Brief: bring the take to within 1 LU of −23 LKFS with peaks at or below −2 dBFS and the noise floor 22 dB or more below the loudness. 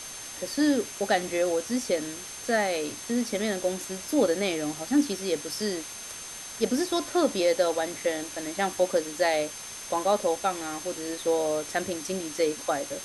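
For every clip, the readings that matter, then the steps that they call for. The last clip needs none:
interfering tone 6,300 Hz; level of the tone −42 dBFS; background noise floor −40 dBFS; target noise floor −50 dBFS; integrated loudness −28.0 LKFS; sample peak −11.5 dBFS; target loudness −23.0 LKFS
→ notch filter 6,300 Hz, Q 30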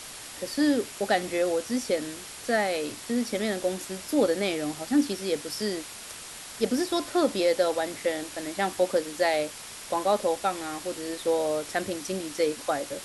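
interfering tone none found; background noise floor −42 dBFS; target noise floor −50 dBFS
→ noise reduction from a noise print 8 dB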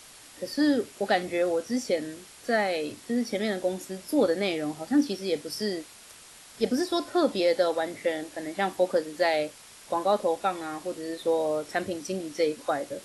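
background noise floor −50 dBFS; integrated loudness −28.0 LKFS; sample peak −12.0 dBFS; target loudness −23.0 LKFS
→ level +5 dB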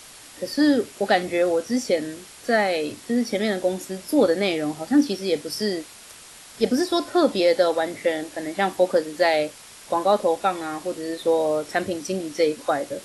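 integrated loudness −23.0 LKFS; sample peak −7.0 dBFS; background noise floor −45 dBFS

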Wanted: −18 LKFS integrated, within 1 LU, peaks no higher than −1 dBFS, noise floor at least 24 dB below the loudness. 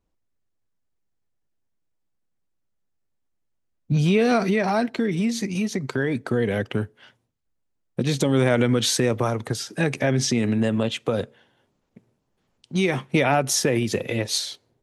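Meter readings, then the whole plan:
integrated loudness −23.0 LKFS; sample peak −7.5 dBFS; target loudness −18.0 LKFS
→ level +5 dB

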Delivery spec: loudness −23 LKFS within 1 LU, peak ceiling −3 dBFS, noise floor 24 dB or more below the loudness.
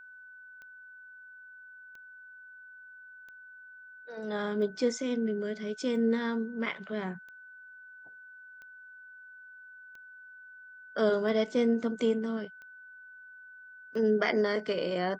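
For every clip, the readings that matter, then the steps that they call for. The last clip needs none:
number of clicks 11; interfering tone 1,500 Hz; level of the tone −48 dBFS; integrated loudness −30.5 LKFS; sample peak −13.5 dBFS; target loudness −23.0 LKFS
→ click removal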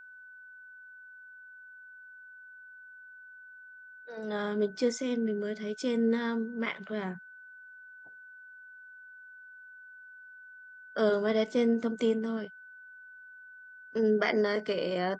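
number of clicks 0; interfering tone 1,500 Hz; level of the tone −48 dBFS
→ notch filter 1,500 Hz, Q 30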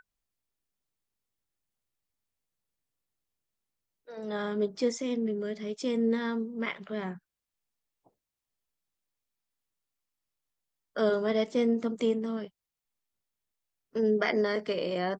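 interfering tone none found; integrated loudness −30.5 LKFS; sample peak −13.5 dBFS; target loudness −23.0 LKFS
→ level +7.5 dB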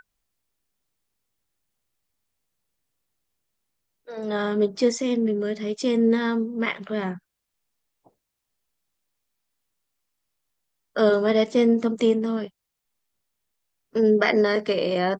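integrated loudness −23.0 LKFS; sample peak −6.0 dBFS; background noise floor −81 dBFS

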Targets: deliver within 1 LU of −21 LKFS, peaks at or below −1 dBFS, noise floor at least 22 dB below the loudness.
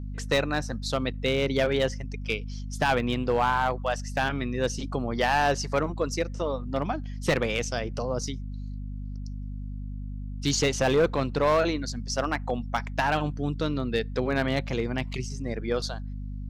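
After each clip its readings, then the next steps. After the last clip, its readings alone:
share of clipped samples 0.7%; peaks flattened at −16.5 dBFS; mains hum 50 Hz; hum harmonics up to 250 Hz; level of the hum −32 dBFS; integrated loudness −27.5 LKFS; sample peak −16.5 dBFS; target loudness −21.0 LKFS
→ clipped peaks rebuilt −16.5 dBFS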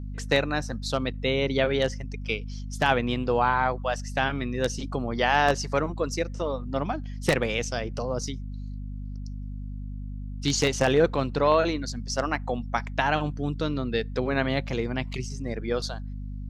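share of clipped samples 0.0%; mains hum 50 Hz; hum harmonics up to 250 Hz; level of the hum −32 dBFS
→ mains-hum notches 50/100/150/200/250 Hz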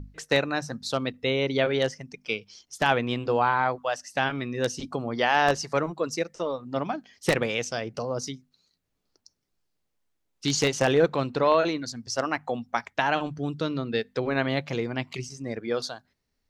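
mains hum none found; integrated loudness −27.0 LKFS; sample peak −7.5 dBFS; target loudness −21.0 LKFS
→ level +6 dB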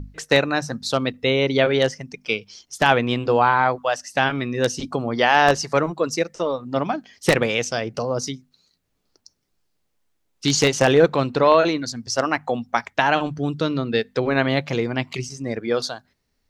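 integrated loudness −21.0 LKFS; sample peak −1.5 dBFS; background noise floor −72 dBFS

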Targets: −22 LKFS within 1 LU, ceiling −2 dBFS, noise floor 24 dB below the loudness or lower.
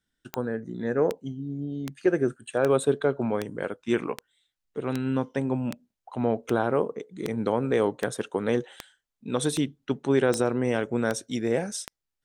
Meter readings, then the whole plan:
number of clicks 16; integrated loudness −27.5 LKFS; sample peak −10.0 dBFS; target loudness −22.0 LKFS
→ click removal
level +5.5 dB

